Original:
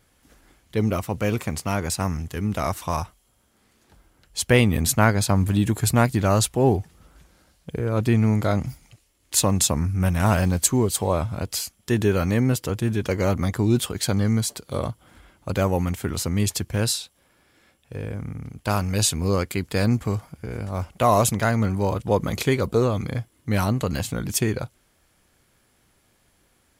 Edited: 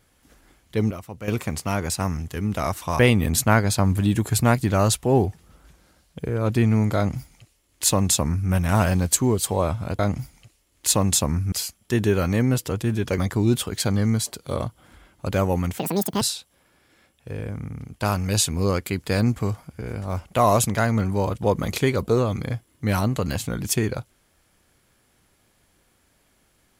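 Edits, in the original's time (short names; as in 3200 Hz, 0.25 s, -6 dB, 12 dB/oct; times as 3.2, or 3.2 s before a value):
0.91–1.28 gain -10 dB
2.99–4.5 cut
8.47–10 copy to 11.5
13.16–13.41 cut
16.01–16.86 speed 196%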